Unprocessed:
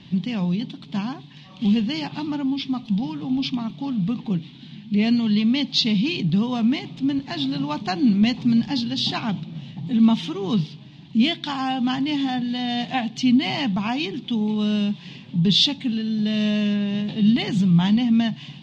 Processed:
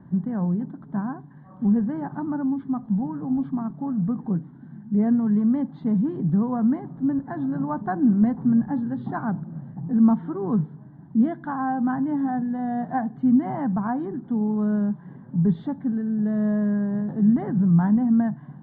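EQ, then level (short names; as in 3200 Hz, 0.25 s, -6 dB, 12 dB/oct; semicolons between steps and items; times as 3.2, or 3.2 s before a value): elliptic low-pass 1600 Hz, stop band 40 dB; 0.0 dB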